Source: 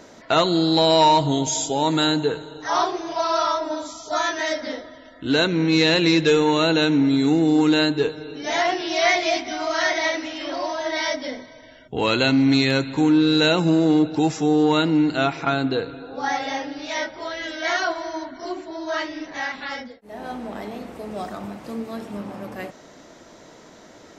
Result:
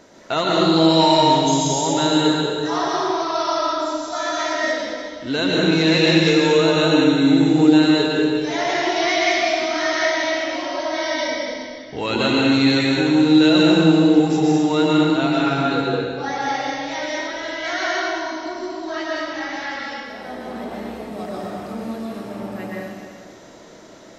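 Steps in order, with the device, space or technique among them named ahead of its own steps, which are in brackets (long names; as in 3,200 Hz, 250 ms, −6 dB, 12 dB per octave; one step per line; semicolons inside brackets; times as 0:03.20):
stairwell (convolution reverb RT60 1.9 s, pre-delay 109 ms, DRR −4.5 dB)
level −3.5 dB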